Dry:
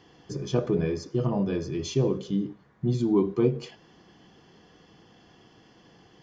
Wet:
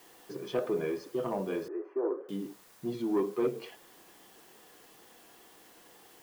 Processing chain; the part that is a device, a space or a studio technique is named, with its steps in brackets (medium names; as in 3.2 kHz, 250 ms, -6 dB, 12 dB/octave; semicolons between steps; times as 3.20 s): tape answering machine (band-pass 390–2900 Hz; saturation -21 dBFS, distortion -17 dB; wow and flutter; white noise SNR 24 dB); 1.68–2.29 s: elliptic band-pass 320–1600 Hz, stop band 40 dB